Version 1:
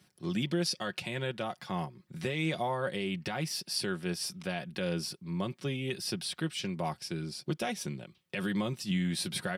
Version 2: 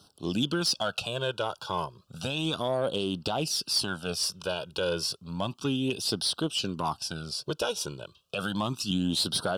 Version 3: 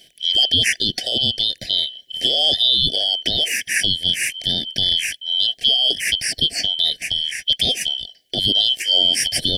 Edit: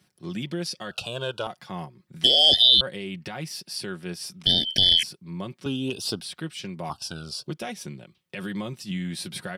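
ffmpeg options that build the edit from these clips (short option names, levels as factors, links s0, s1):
-filter_complex "[1:a]asplit=3[s0][s1][s2];[2:a]asplit=2[s3][s4];[0:a]asplit=6[s5][s6][s7][s8][s9][s10];[s5]atrim=end=0.912[s11];[s0]atrim=start=0.908:end=1.472[s12];[s6]atrim=start=1.468:end=2.242[s13];[s3]atrim=start=2.238:end=2.812[s14];[s7]atrim=start=2.808:end=4.462[s15];[s4]atrim=start=4.458:end=5.032[s16];[s8]atrim=start=5.028:end=5.662[s17];[s1]atrim=start=5.658:end=6.202[s18];[s9]atrim=start=6.198:end=6.902[s19];[s2]atrim=start=6.898:end=7.472[s20];[s10]atrim=start=7.468[s21];[s11][s12]acrossfade=d=0.004:c1=hsin:c2=hsin[s22];[s22][s13]acrossfade=d=0.004:c1=hsin:c2=hsin[s23];[s23][s14]acrossfade=d=0.004:c1=hsin:c2=hsin[s24];[s24][s15]acrossfade=d=0.004:c1=hsin:c2=hsin[s25];[s25][s16]acrossfade=d=0.004:c1=hsin:c2=hsin[s26];[s26][s17]acrossfade=d=0.004:c1=hsin:c2=hsin[s27];[s27][s18]acrossfade=d=0.004:c1=hsin:c2=hsin[s28];[s28][s19]acrossfade=d=0.004:c1=hsin:c2=hsin[s29];[s29][s20]acrossfade=d=0.004:c1=hsin:c2=hsin[s30];[s30][s21]acrossfade=d=0.004:c1=hsin:c2=hsin"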